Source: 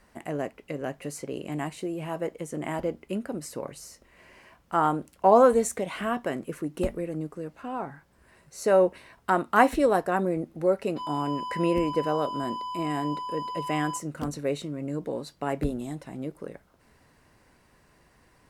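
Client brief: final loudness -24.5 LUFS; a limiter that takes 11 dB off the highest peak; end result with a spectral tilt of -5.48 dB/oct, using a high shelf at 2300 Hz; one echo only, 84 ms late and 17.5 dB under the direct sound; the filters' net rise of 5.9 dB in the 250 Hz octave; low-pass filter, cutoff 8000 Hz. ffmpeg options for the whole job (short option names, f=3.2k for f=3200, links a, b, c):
-af "lowpass=8k,equalizer=f=250:t=o:g=7.5,highshelf=f=2.3k:g=7,alimiter=limit=-13dB:level=0:latency=1,aecho=1:1:84:0.133,volume=2dB"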